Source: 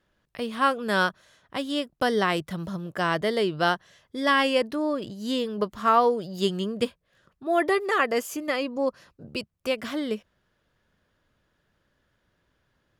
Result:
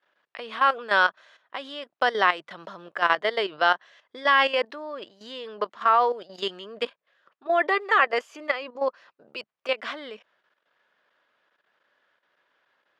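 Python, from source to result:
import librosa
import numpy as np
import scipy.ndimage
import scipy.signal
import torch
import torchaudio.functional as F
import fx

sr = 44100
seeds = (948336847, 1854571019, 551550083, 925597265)

y = fx.level_steps(x, sr, step_db=12)
y = fx.bandpass_edges(y, sr, low_hz=670.0, high_hz=3300.0)
y = F.gain(torch.from_numpy(y), 7.5).numpy()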